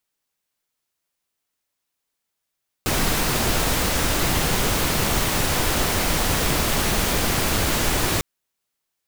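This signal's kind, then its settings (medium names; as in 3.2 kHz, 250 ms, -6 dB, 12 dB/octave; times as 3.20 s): noise pink, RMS -21 dBFS 5.35 s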